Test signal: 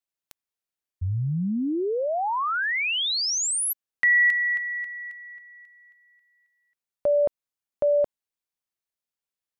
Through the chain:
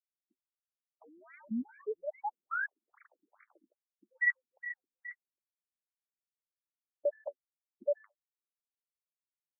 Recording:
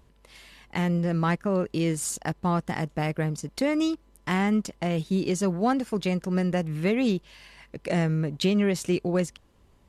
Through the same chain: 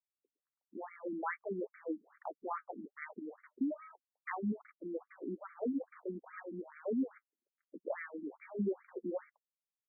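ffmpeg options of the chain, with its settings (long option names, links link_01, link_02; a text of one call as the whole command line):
ffmpeg -i in.wav -af "acrusher=bits=5:mix=0:aa=0.5,flanger=delay=3.2:depth=6.4:regen=-47:speed=1.3:shape=sinusoidal,afftfilt=real='re*between(b*sr/1024,250*pow(1700/250,0.5+0.5*sin(2*PI*2.4*pts/sr))/1.41,250*pow(1700/250,0.5+0.5*sin(2*PI*2.4*pts/sr))*1.41)':imag='im*between(b*sr/1024,250*pow(1700/250,0.5+0.5*sin(2*PI*2.4*pts/sr))/1.41,250*pow(1700/250,0.5+0.5*sin(2*PI*2.4*pts/sr))*1.41)':win_size=1024:overlap=0.75,volume=-3dB" out.wav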